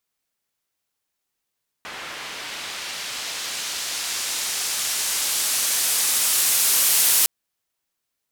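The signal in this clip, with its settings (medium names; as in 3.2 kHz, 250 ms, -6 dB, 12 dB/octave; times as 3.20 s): swept filtered noise pink, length 5.41 s bandpass, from 1.7 kHz, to 12 kHz, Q 0.74, linear, gain ramp +20.5 dB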